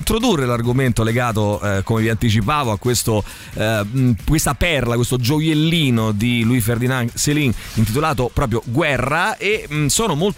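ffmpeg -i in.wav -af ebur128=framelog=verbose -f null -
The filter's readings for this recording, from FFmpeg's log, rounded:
Integrated loudness:
  I:         -17.7 LUFS
  Threshold: -27.7 LUFS
Loudness range:
  LRA:         1.4 LU
  Threshold: -37.8 LUFS
  LRA low:   -18.4 LUFS
  LRA high:  -17.0 LUFS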